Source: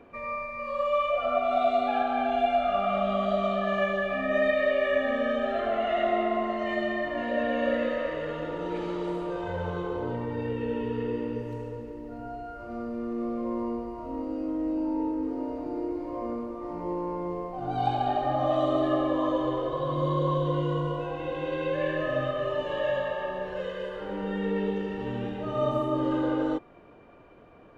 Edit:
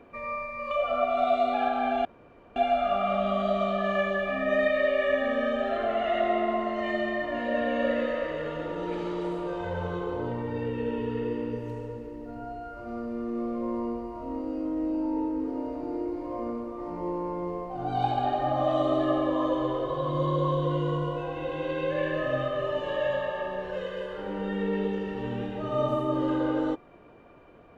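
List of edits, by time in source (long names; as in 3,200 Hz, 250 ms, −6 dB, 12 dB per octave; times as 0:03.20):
0:00.71–0:01.05: remove
0:02.39: splice in room tone 0.51 s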